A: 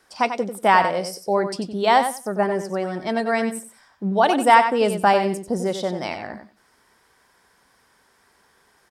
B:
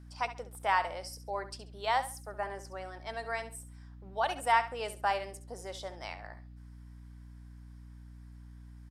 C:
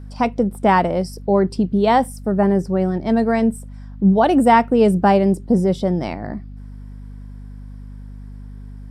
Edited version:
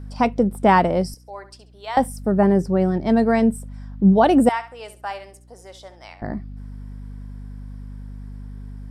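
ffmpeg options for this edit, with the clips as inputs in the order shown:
-filter_complex "[1:a]asplit=2[a][b];[2:a]asplit=3[c][d][e];[c]atrim=end=1.142[f];[a]atrim=start=1.138:end=1.972[g];[d]atrim=start=1.968:end=4.492[h];[b]atrim=start=4.488:end=6.222[i];[e]atrim=start=6.218[j];[f][g]acrossfade=d=0.004:c1=hsin:c2=hsin[k];[k][h]acrossfade=d=0.004:c1=hsin:c2=hsin[l];[l][i]acrossfade=d=0.004:c1=hsin:c2=hsin[m];[m][j]acrossfade=d=0.004:c1=hsin:c2=hsin"

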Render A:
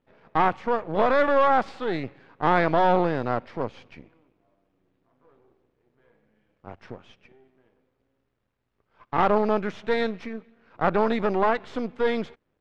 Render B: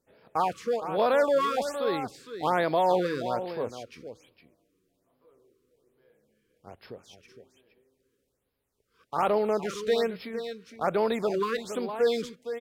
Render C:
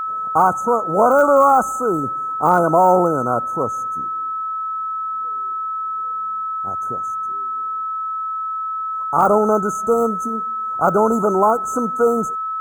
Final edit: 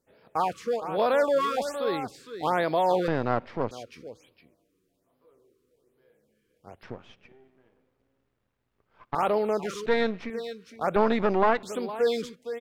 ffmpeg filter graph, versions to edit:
-filter_complex "[0:a]asplit=4[a][b][c][d];[1:a]asplit=5[e][f][g][h][i];[e]atrim=end=3.082[j];[a]atrim=start=3.078:end=3.712[k];[f]atrim=start=3.708:end=6.832[l];[b]atrim=start=6.828:end=9.152[m];[g]atrim=start=9.148:end=9.862[n];[c]atrim=start=9.858:end=10.302[o];[h]atrim=start=10.298:end=10.962[p];[d]atrim=start=10.958:end=11.632[q];[i]atrim=start=11.628[r];[j][k]acrossfade=d=0.004:c1=hsin:c2=hsin[s];[s][l]acrossfade=d=0.004:c1=hsin:c2=hsin[t];[t][m]acrossfade=d=0.004:c1=hsin:c2=hsin[u];[u][n]acrossfade=d=0.004:c1=hsin:c2=hsin[v];[v][o]acrossfade=d=0.004:c1=hsin:c2=hsin[w];[w][p]acrossfade=d=0.004:c1=hsin:c2=hsin[x];[x][q]acrossfade=d=0.004:c1=hsin:c2=hsin[y];[y][r]acrossfade=d=0.004:c1=hsin:c2=hsin"

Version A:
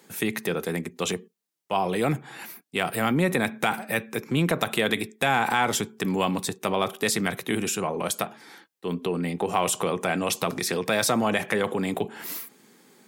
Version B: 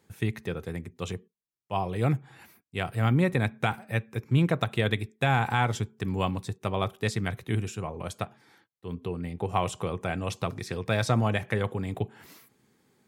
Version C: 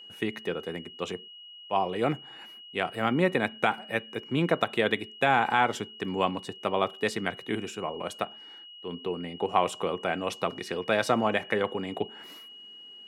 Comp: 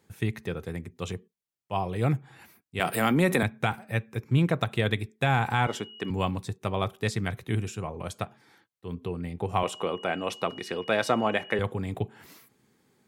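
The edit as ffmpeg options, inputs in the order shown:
-filter_complex "[2:a]asplit=2[a][b];[1:a]asplit=4[c][d][e][f];[c]atrim=end=2.802[g];[0:a]atrim=start=2.798:end=3.432[h];[d]atrim=start=3.428:end=5.672[i];[a]atrim=start=5.668:end=6.102[j];[e]atrim=start=6.098:end=9.632[k];[b]atrim=start=9.628:end=11.592[l];[f]atrim=start=11.588[m];[g][h]acrossfade=d=0.004:c1=hsin:c2=hsin[n];[n][i]acrossfade=d=0.004:c1=hsin:c2=hsin[o];[o][j]acrossfade=d=0.004:c1=hsin:c2=hsin[p];[p][k]acrossfade=d=0.004:c1=hsin:c2=hsin[q];[q][l]acrossfade=d=0.004:c1=hsin:c2=hsin[r];[r][m]acrossfade=d=0.004:c1=hsin:c2=hsin"

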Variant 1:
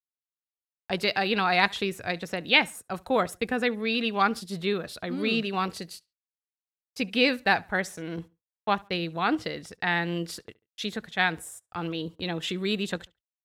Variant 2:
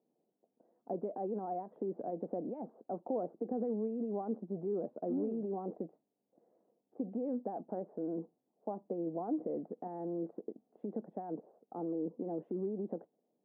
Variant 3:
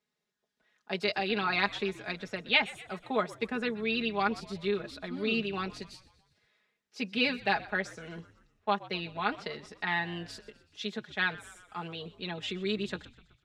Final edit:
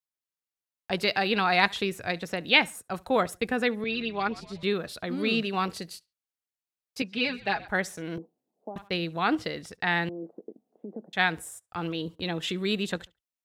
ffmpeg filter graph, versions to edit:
-filter_complex "[2:a]asplit=2[a][b];[1:a]asplit=2[c][d];[0:a]asplit=5[e][f][g][h][i];[e]atrim=end=3.842[j];[a]atrim=start=3.838:end=4.632[k];[f]atrim=start=4.628:end=7.022[l];[b]atrim=start=7.018:end=7.682[m];[g]atrim=start=7.678:end=8.182[n];[c]atrim=start=8.178:end=8.762[o];[h]atrim=start=8.758:end=10.092[p];[d]atrim=start=10.088:end=11.132[q];[i]atrim=start=11.128[r];[j][k]acrossfade=d=0.004:c1=hsin:c2=hsin[s];[s][l]acrossfade=d=0.004:c1=hsin:c2=hsin[t];[t][m]acrossfade=d=0.004:c1=hsin:c2=hsin[u];[u][n]acrossfade=d=0.004:c1=hsin:c2=hsin[v];[v][o]acrossfade=d=0.004:c1=hsin:c2=hsin[w];[w][p]acrossfade=d=0.004:c1=hsin:c2=hsin[x];[x][q]acrossfade=d=0.004:c1=hsin:c2=hsin[y];[y][r]acrossfade=d=0.004:c1=hsin:c2=hsin"

